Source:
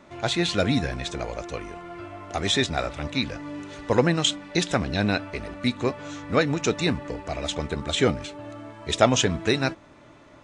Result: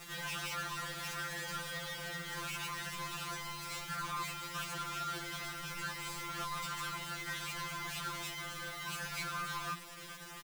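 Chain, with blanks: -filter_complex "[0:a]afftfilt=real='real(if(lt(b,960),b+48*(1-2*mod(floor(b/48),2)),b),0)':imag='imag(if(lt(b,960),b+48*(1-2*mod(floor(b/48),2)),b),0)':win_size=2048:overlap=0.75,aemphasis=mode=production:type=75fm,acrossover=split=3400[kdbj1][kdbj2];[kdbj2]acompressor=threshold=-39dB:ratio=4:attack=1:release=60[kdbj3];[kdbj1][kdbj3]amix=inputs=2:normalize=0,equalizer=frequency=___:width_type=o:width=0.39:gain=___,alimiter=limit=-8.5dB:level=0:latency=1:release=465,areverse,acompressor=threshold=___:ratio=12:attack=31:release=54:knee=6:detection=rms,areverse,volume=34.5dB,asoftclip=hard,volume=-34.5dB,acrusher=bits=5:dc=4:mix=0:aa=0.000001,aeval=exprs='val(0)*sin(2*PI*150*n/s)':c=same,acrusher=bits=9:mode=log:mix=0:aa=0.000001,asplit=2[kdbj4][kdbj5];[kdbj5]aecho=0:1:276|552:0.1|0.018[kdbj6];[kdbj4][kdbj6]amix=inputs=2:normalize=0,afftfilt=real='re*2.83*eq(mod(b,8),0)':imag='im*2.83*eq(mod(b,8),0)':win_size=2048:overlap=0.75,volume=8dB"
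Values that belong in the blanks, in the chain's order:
270, 7.5, -30dB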